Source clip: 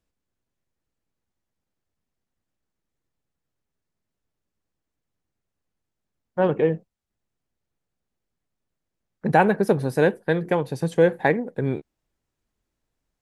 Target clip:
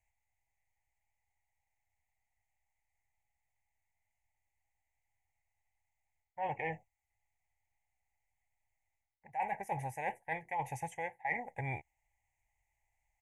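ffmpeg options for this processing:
ffmpeg -i in.wav -af "firequalizer=gain_entry='entry(100,0);entry(180,-20);entry(430,-19);entry(830,12);entry(1300,-28);entry(2000,14);entry(4200,-26);entry(6400,3);entry(10000,-1)':delay=0.05:min_phase=1,areverse,acompressor=threshold=-31dB:ratio=20,areverse,volume=-2.5dB" out.wav

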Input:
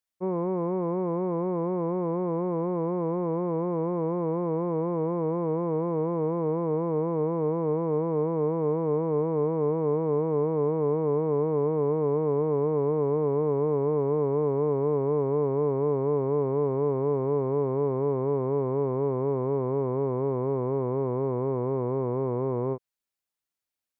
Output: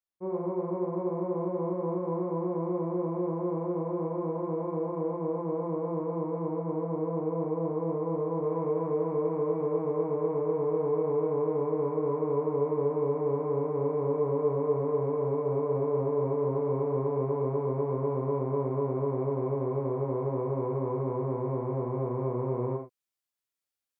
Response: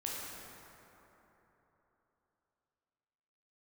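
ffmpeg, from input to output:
-filter_complex "[0:a]asetnsamples=nb_out_samples=441:pad=0,asendcmd='8.44 highshelf g 3',highshelf=frequency=2100:gain=-7.5[link_01];[1:a]atrim=start_sample=2205,atrim=end_sample=6174,asetrate=52920,aresample=44100[link_02];[link_01][link_02]afir=irnorm=-1:irlink=0,volume=-1.5dB"

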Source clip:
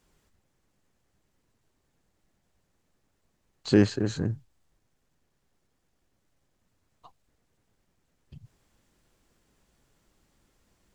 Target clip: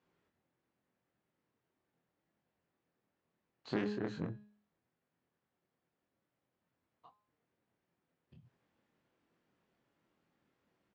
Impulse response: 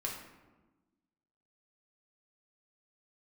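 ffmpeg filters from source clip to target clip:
-filter_complex "[0:a]bandreject=frequency=208.4:width_type=h:width=4,bandreject=frequency=416.8:width_type=h:width=4,bandreject=frequency=625.2:width_type=h:width=4,bandreject=frequency=833.6:width_type=h:width=4,bandreject=frequency=1042:width_type=h:width=4,bandreject=frequency=1250.4:width_type=h:width=4,bandreject=frequency=1458.8:width_type=h:width=4,bandreject=frequency=1667.2:width_type=h:width=4,bandreject=frequency=1875.6:width_type=h:width=4,bandreject=frequency=2084:width_type=h:width=4,bandreject=frequency=2292.4:width_type=h:width=4,bandreject=frequency=2500.8:width_type=h:width=4,bandreject=frequency=2709.2:width_type=h:width=4,bandreject=frequency=2917.6:width_type=h:width=4,bandreject=frequency=3126:width_type=h:width=4,bandreject=frequency=3334.4:width_type=h:width=4,bandreject=frequency=3542.8:width_type=h:width=4,bandreject=frequency=3751.2:width_type=h:width=4,bandreject=frequency=3959.6:width_type=h:width=4,bandreject=frequency=4168:width_type=h:width=4,alimiter=limit=-16dB:level=0:latency=1:release=131,aeval=exprs='0.158*(cos(1*acos(clip(val(0)/0.158,-1,1)))-cos(1*PI/2))+0.0398*(cos(3*acos(clip(val(0)/0.158,-1,1)))-cos(3*PI/2))+0.02*(cos(5*acos(clip(val(0)/0.158,-1,1)))-cos(5*PI/2))':channel_layout=same,highpass=150,lowpass=2800,asplit=2[link_01][link_02];[link_02]adelay=24,volume=-4dB[link_03];[link_01][link_03]amix=inputs=2:normalize=0,volume=-7dB"

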